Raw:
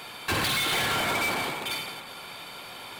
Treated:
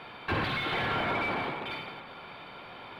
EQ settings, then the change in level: distance through air 390 m; 0.0 dB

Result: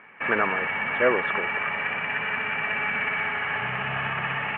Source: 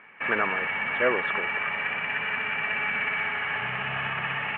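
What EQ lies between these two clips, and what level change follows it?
treble shelf 2.9 kHz -8 dB; +3.5 dB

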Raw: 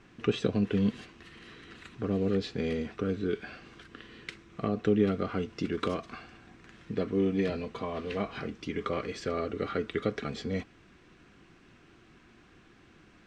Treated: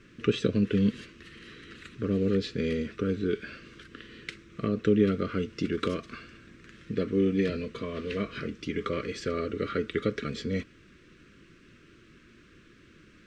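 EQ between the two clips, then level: Butterworth band-stop 820 Hz, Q 1.3; +2.5 dB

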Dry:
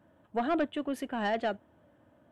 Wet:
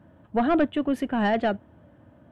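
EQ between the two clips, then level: tone controls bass +8 dB, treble -7 dB; +6.0 dB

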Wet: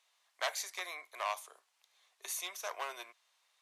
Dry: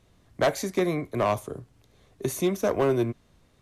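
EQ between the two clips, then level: high-pass 950 Hz 24 dB/octave; peaking EQ 1.4 kHz -6.5 dB 1.1 oct; treble shelf 10 kHz -5 dB; -1.5 dB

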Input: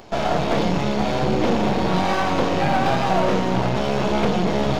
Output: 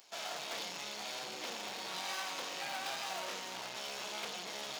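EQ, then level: high-pass 140 Hz 6 dB/octave; differentiator; -3.0 dB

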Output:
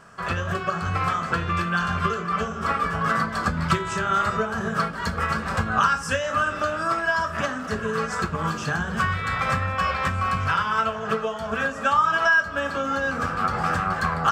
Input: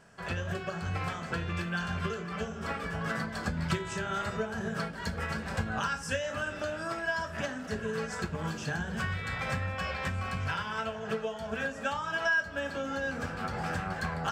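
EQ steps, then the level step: peaking EQ 1.2 kHz +13 dB 0.36 oct; +6.5 dB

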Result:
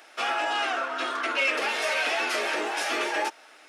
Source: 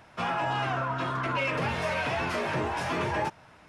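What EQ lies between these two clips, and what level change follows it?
steep high-pass 290 Hz 36 dB/octave; Butterworth band-stop 1 kHz, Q 7.3; treble shelf 2 kHz +11 dB; 0.0 dB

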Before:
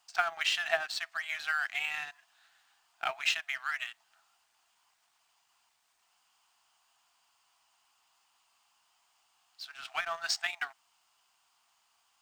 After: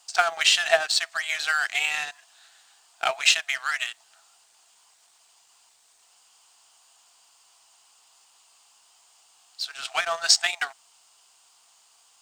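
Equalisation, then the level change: graphic EQ 500/4000/8000 Hz +9/+5/+12 dB; +5.5 dB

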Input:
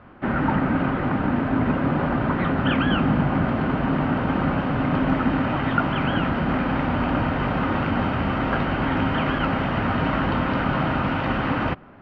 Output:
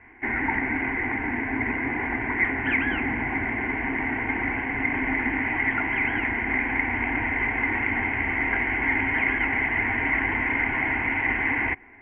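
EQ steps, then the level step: resonant low-pass 2.1 kHz, resonance Q 13; static phaser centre 850 Hz, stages 8; -4.5 dB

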